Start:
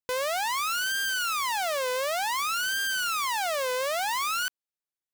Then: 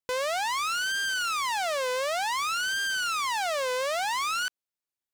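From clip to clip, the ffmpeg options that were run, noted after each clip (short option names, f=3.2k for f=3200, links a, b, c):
-filter_complex "[0:a]acrossover=split=9900[a][b];[b]acompressor=threshold=-46dB:ratio=4:attack=1:release=60[c];[a][c]amix=inputs=2:normalize=0"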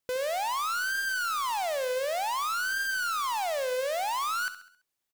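-filter_complex "[0:a]asoftclip=type=tanh:threshold=-36.5dB,asplit=2[a][b];[b]aecho=0:1:67|134|201|268|335:0.237|0.111|0.0524|0.0246|0.0116[c];[a][c]amix=inputs=2:normalize=0,volume=7.5dB"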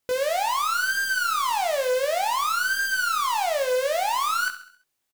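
-filter_complex "[0:a]asplit=2[a][b];[b]adelay=20,volume=-5dB[c];[a][c]amix=inputs=2:normalize=0,volume=4.5dB"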